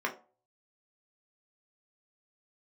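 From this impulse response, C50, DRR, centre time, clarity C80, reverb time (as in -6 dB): 13.5 dB, -0.5 dB, 13 ms, 18.5 dB, 0.40 s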